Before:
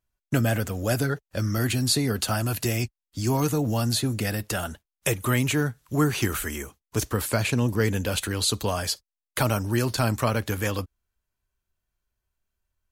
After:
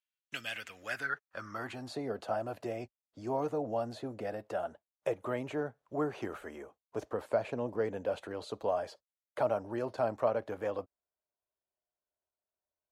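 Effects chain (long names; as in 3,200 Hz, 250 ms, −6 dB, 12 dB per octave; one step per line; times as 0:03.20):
band-pass filter sweep 2,900 Hz → 620 Hz, 0:00.48–0:02.06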